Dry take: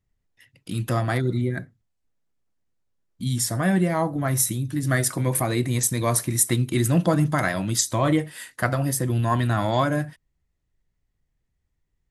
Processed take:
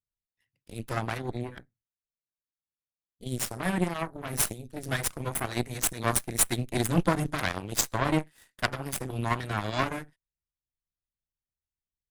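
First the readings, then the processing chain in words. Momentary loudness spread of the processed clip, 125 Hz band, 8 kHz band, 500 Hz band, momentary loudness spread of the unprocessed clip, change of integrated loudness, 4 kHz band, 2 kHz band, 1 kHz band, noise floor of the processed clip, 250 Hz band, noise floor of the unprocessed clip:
12 LU, −10.0 dB, −5.5 dB, −7.5 dB, 7 LU, −6.5 dB, −3.0 dB, −4.0 dB, −5.0 dB, below −85 dBFS, −8.0 dB, −76 dBFS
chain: harmonic generator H 2 −7 dB, 3 −28 dB, 4 −8 dB, 7 −19 dB, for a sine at −6.5 dBFS
dynamic equaliser 500 Hz, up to −4 dB, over −36 dBFS, Q 2.1
level −2.5 dB

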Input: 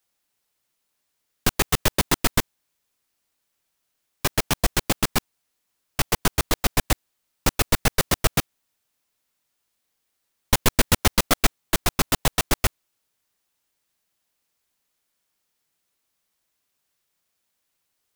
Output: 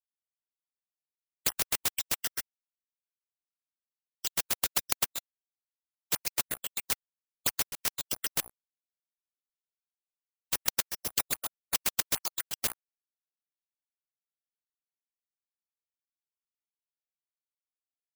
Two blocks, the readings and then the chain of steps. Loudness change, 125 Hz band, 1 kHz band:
−7.5 dB, −24.5 dB, −15.0 dB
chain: time-frequency cells dropped at random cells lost 82%
high-pass filter 160 Hz 12 dB per octave
high-shelf EQ 3,800 Hz +9.5 dB
mains-hum notches 60/120/180/240/300/360/420/480/540/600 Hz
reversed playback
upward compression, threshold −32 dBFS
reversed playback
dead-zone distortion −32 dBFS
gate pattern "xxxx.x...x.." 125 BPM −24 dB
bad sample-rate conversion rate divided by 4×, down filtered, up zero stuff
every bin compressed towards the loudest bin 10 to 1
level −3 dB

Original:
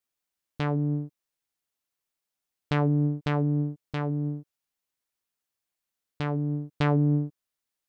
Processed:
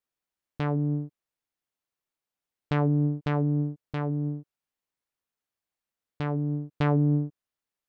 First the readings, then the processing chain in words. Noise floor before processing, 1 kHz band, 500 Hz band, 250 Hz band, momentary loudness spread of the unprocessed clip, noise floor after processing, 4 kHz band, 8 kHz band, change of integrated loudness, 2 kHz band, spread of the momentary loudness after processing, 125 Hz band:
below −85 dBFS, −0.5 dB, 0.0 dB, 0.0 dB, 10 LU, below −85 dBFS, −4.5 dB, can't be measured, 0.0 dB, −2.0 dB, 10 LU, 0.0 dB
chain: high-shelf EQ 3,100 Hz −8 dB

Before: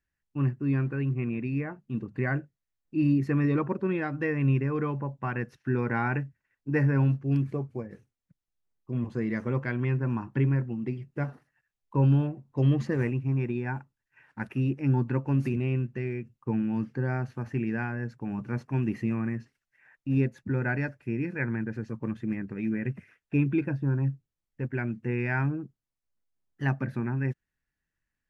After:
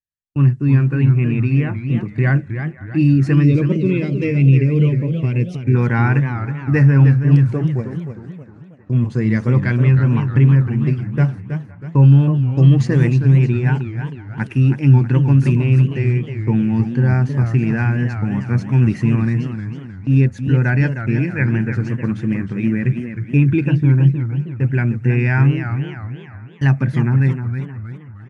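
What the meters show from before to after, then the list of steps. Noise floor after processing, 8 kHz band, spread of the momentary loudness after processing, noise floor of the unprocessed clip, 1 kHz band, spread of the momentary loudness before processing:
−37 dBFS, can't be measured, 12 LU, below −85 dBFS, +7.0 dB, 10 LU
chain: downsampling to 22,050 Hz
high-shelf EQ 2,500 Hz +10 dB
noise gate −44 dBFS, range −27 dB
on a send: delay with a band-pass on its return 512 ms, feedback 51%, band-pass 1,100 Hz, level −21 dB
on the sum: gain on a spectral selection 0:03.43–0:05.74, 640–2,000 Hz −17 dB
parametric band 120 Hz +10 dB 1.6 octaves
in parallel at −1.5 dB: brickwall limiter −14.5 dBFS, peak gain reduction 8.5 dB
on the sum: feedback echo with a swinging delay time 316 ms, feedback 43%, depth 198 cents, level −8.5 dB
level +1 dB

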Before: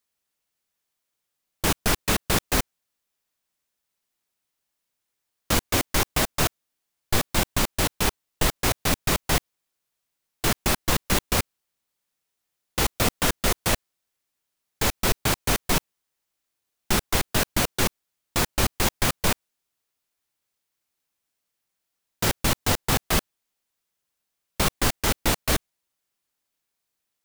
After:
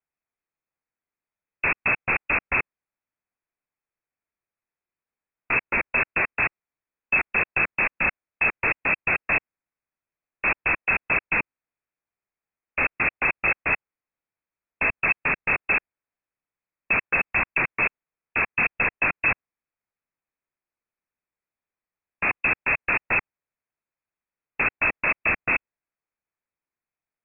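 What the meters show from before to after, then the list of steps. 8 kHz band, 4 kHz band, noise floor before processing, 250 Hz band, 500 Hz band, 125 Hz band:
below −40 dB, below −25 dB, −81 dBFS, −8.5 dB, −5.0 dB, −11.5 dB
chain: leveller curve on the samples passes 3
soft clipping −18 dBFS, distortion −12 dB
voice inversion scrambler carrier 2,600 Hz

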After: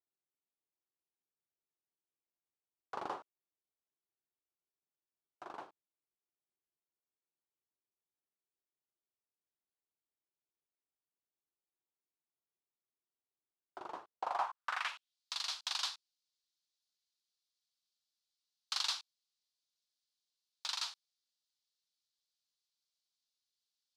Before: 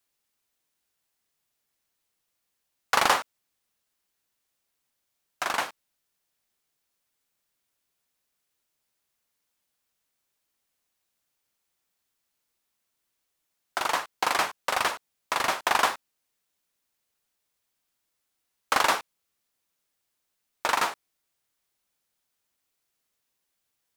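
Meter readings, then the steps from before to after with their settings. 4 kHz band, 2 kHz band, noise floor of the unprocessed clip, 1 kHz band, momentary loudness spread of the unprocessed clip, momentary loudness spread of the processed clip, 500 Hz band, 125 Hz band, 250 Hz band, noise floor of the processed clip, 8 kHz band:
−7.5 dB, −18.0 dB, −80 dBFS, −16.0 dB, 11 LU, 16 LU, −18.0 dB, below −20 dB, −17.5 dB, below −85 dBFS, −12.5 dB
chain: band-pass filter sweep 370 Hz → 4,300 Hz, 0:14.04–0:15.18
graphic EQ with 10 bands 250 Hz −10 dB, 500 Hz −11 dB, 2,000 Hz −10 dB, 16,000 Hz −6 dB
level +1.5 dB

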